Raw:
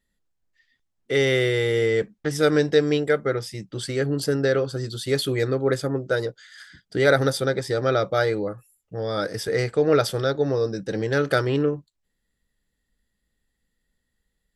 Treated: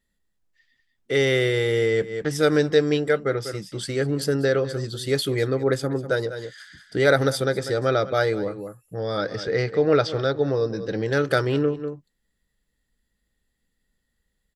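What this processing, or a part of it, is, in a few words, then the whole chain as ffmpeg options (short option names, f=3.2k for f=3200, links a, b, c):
ducked delay: -filter_complex "[0:a]asettb=1/sr,asplit=3[a][b][c];[a]atrim=end=9.174[d];[b]atrim=start=9.17:end=11.06,asetpts=PTS-STARTPTS,afade=t=in:d=0.004:c=qsin,afade=t=out:st=1.886:d=0.004:c=qsin,lowpass=f=5.3k:w=0.5412,lowpass=f=5.3k:w=1.3066[e];[c]atrim=start=11.056[f];[d][e]acrossfade=d=0.004:c1=hsin:c2=qsin[g];[g][f]acrossfade=d=0.004:c1=qsin:c2=hsin,asplit=3[h][i][j];[i]adelay=195,volume=-7dB[k];[j]apad=whole_len=650281[l];[k][l]sidechaincompress=threshold=-34dB:ratio=10:attack=25:release=136[m];[h][m]amix=inputs=2:normalize=0"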